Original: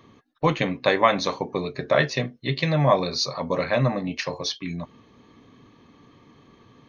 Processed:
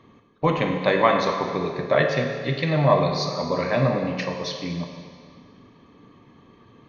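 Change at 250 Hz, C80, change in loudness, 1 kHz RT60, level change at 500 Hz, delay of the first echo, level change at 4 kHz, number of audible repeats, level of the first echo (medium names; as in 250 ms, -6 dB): +1.5 dB, 5.5 dB, +1.0 dB, 1.9 s, +2.0 dB, no echo, -3.0 dB, no echo, no echo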